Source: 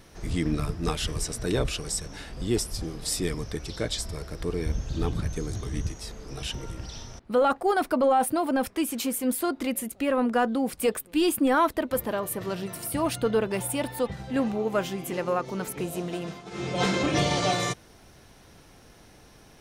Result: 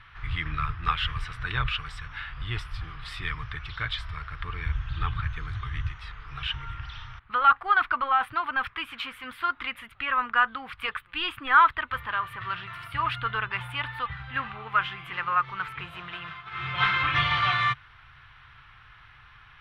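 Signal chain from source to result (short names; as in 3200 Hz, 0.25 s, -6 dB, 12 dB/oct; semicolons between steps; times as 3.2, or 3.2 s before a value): EQ curve 130 Hz 0 dB, 200 Hz -21 dB, 590 Hz -19 dB, 1200 Hz +11 dB, 3300 Hz +4 dB, 6500 Hz -27 dB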